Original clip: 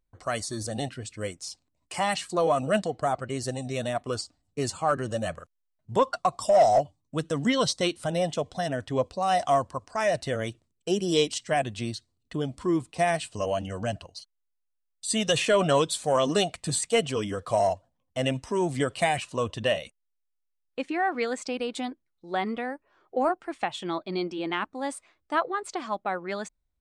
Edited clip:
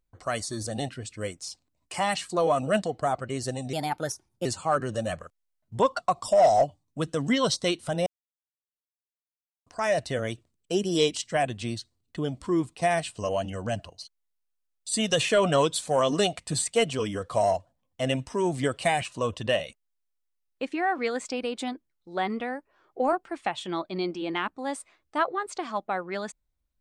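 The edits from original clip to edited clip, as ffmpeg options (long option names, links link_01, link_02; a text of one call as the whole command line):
ffmpeg -i in.wav -filter_complex "[0:a]asplit=5[link_01][link_02][link_03][link_04][link_05];[link_01]atrim=end=3.734[link_06];[link_02]atrim=start=3.73:end=4.62,asetpts=PTS-STARTPTS,asetrate=54243,aresample=44100[link_07];[link_03]atrim=start=4.616:end=8.23,asetpts=PTS-STARTPTS,afade=type=out:start_time=3.61:duration=0.004:curve=hsin[link_08];[link_04]atrim=start=8.23:end=9.83,asetpts=PTS-STARTPTS,volume=0[link_09];[link_05]atrim=start=9.83,asetpts=PTS-STARTPTS,afade=type=in:duration=0.004:curve=hsin[link_10];[link_06][link_07]acrossfade=duration=0.004:curve1=hsin:curve2=hsin[link_11];[link_08][link_09][link_10]concat=n=3:v=0:a=1[link_12];[link_11][link_12]acrossfade=duration=0.004:curve1=hsin:curve2=hsin" out.wav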